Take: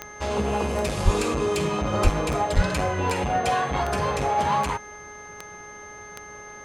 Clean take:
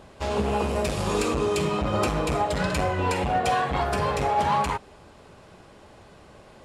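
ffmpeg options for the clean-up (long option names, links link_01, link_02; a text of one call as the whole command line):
ffmpeg -i in.wav -filter_complex "[0:a]adeclick=threshold=4,bandreject=frequency=418.6:width_type=h:width=4,bandreject=frequency=837.2:width_type=h:width=4,bandreject=frequency=1255.8:width_type=h:width=4,bandreject=frequency=1674.4:width_type=h:width=4,bandreject=frequency=2093:width_type=h:width=4,bandreject=frequency=6300:width=30,asplit=3[link_01][link_02][link_03];[link_01]afade=type=out:start_time=1.04:duration=0.02[link_04];[link_02]highpass=frequency=140:width=0.5412,highpass=frequency=140:width=1.3066,afade=type=in:start_time=1.04:duration=0.02,afade=type=out:start_time=1.16:duration=0.02[link_05];[link_03]afade=type=in:start_time=1.16:duration=0.02[link_06];[link_04][link_05][link_06]amix=inputs=3:normalize=0,asplit=3[link_07][link_08][link_09];[link_07]afade=type=out:start_time=2.03:duration=0.02[link_10];[link_08]highpass=frequency=140:width=0.5412,highpass=frequency=140:width=1.3066,afade=type=in:start_time=2.03:duration=0.02,afade=type=out:start_time=2.15:duration=0.02[link_11];[link_09]afade=type=in:start_time=2.15:duration=0.02[link_12];[link_10][link_11][link_12]amix=inputs=3:normalize=0,asplit=3[link_13][link_14][link_15];[link_13]afade=type=out:start_time=2.55:duration=0.02[link_16];[link_14]highpass=frequency=140:width=0.5412,highpass=frequency=140:width=1.3066,afade=type=in:start_time=2.55:duration=0.02,afade=type=out:start_time=2.67:duration=0.02[link_17];[link_15]afade=type=in:start_time=2.67:duration=0.02[link_18];[link_16][link_17][link_18]amix=inputs=3:normalize=0" out.wav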